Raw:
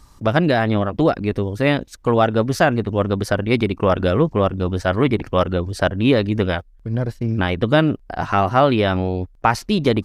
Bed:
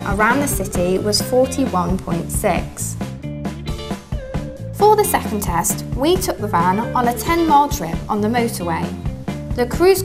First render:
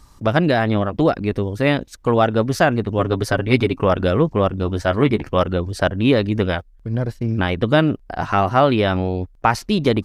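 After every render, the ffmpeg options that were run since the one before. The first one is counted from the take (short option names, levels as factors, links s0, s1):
-filter_complex "[0:a]asettb=1/sr,asplit=3[s0][s1][s2];[s0]atrim=end=2.984[s3];[s1]atrim=start=2.98:end=3.84,asetpts=PTS-STARTPTS,afade=t=in:d=0.004:c=qsin,afade=t=out:st=0.856:d=0.004:c=qsin,aecho=1:1:7.2:0.65,atrim=end_sample=37926[s4];[s2]atrim=start=3.836[s5];[s3][s4]acrossfade=d=0.004:c1=hsin:c2=qsin[s6];[s6][s5]acrossfade=d=0.004:c1=qsin:c2=hsin,asettb=1/sr,asplit=3[s7][s8][s9];[s7]atrim=end=4.614[s10];[s8]atrim=start=4.61:end=5.36,asetpts=PTS-STARTPTS,afade=t=in:d=0.004:c=qsin,afade=t=out:st=0.746:d=0.004:c=qsin,asplit=2[s11][s12];[s12]adelay=14,volume=0.282[s13];[s11][s13]amix=inputs=2:normalize=0,atrim=end_sample=33075[s14];[s9]atrim=start=5.356[s15];[s10][s14]acrossfade=d=0.004:c1=hsin:c2=qsin[s16];[s16][s15]acrossfade=d=0.004:c1=qsin:c2=hsin"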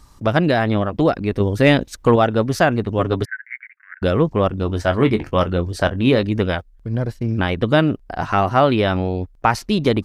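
-filter_complex "[0:a]asettb=1/sr,asplit=3[s0][s1][s2];[s0]atrim=end=1.404[s3];[s1]atrim=start=1.4:end=2.16,asetpts=PTS-STARTPTS,afade=t=in:d=0.004:c=qsin,afade=t=out:st=0.756:d=0.004:c=qsin,acontrast=26[s4];[s2]atrim=start=2.156[s5];[s3][s4]acrossfade=d=0.004:c1=hsin:c2=qsin[s6];[s6][s5]acrossfade=d=0.004:c1=qsin:c2=hsin,asettb=1/sr,asplit=3[s7][s8][s9];[s7]atrim=end=3.254[s10];[s8]atrim=start=3.25:end=4.02,asetpts=PTS-STARTPTS,afade=t=in:d=0.004:c=qsin,afade=t=out:st=0.766:d=0.004:c=qsin,asuperpass=centerf=1800:order=8:qfactor=3[s11];[s9]atrim=start=4.016[s12];[s10][s11]acrossfade=d=0.004:c1=hsin:c2=qsin[s13];[s13][s12]acrossfade=d=0.004:c1=qsin:c2=hsin,asettb=1/sr,asplit=3[s14][s15][s16];[s14]atrim=end=4.674[s17];[s15]atrim=start=4.67:end=6.23,asetpts=PTS-STARTPTS,afade=t=in:d=0.004:c=qsin,afade=t=out:st=1.556:d=0.004:c=qsin,asplit=2[s18][s19];[s19]adelay=23,volume=0.251[s20];[s18][s20]amix=inputs=2:normalize=0,atrim=end_sample=68796[s21];[s16]atrim=start=6.226[s22];[s17][s21]acrossfade=d=0.004:c1=hsin:c2=qsin[s23];[s23][s22]acrossfade=d=0.004:c1=qsin:c2=hsin"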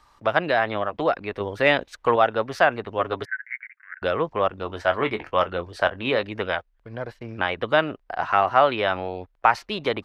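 -filter_complex "[0:a]acrossover=split=510 3700:gain=0.141 1 0.178[s0][s1][s2];[s0][s1][s2]amix=inputs=3:normalize=0"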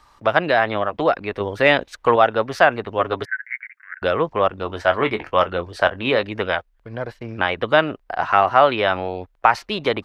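-af "volume=1.58,alimiter=limit=0.891:level=0:latency=1"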